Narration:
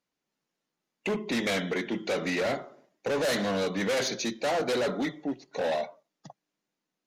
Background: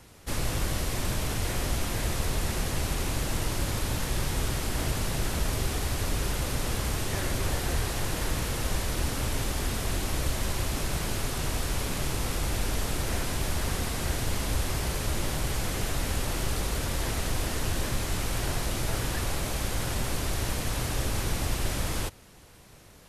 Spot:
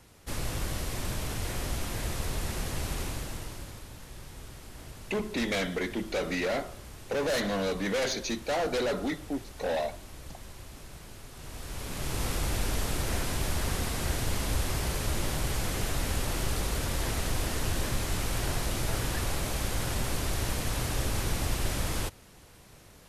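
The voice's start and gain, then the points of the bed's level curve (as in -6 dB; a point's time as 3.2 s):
4.05 s, -1.5 dB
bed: 3.01 s -4 dB
3.89 s -16.5 dB
11.29 s -16.5 dB
12.22 s -1 dB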